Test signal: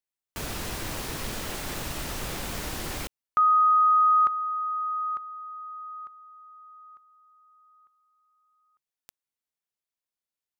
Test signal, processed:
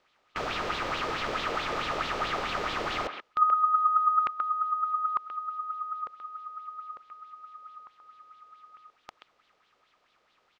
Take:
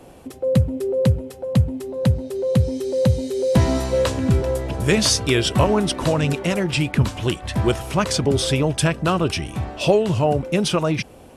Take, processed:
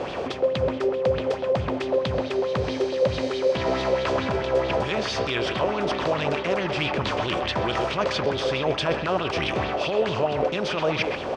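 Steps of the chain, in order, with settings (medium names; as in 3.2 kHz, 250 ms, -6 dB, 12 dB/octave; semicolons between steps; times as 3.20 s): spectral levelling over time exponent 0.6; peak limiter -8 dBFS; bass shelf 240 Hz -11.5 dB; speakerphone echo 130 ms, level -6 dB; reverse; compression, threshold -23 dBFS; reverse; distance through air 180 m; sweeping bell 4.6 Hz 450–3800 Hz +10 dB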